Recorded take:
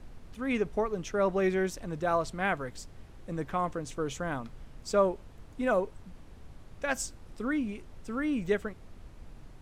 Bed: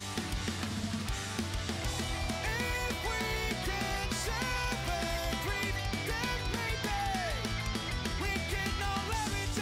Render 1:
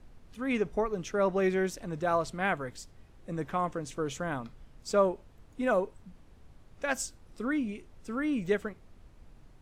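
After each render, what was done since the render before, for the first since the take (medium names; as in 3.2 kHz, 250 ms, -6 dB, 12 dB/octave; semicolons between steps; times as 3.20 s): noise print and reduce 6 dB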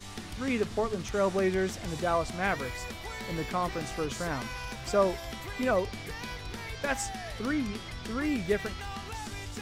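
add bed -5.5 dB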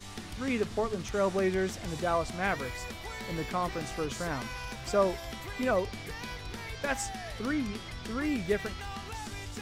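trim -1 dB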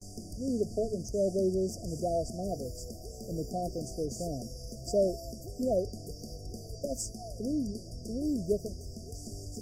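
FFT band-reject 740–4600 Hz; gate with hold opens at -41 dBFS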